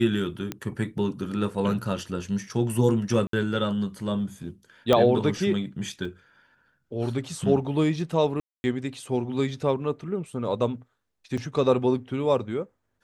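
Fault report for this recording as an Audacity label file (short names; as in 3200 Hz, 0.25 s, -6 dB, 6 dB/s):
0.520000	0.520000	pop -15 dBFS
3.270000	3.330000	gap 63 ms
4.930000	4.930000	pop -8 dBFS
6.050000	6.050000	gap 3.5 ms
8.400000	8.640000	gap 0.24 s
11.370000	11.380000	gap 5.6 ms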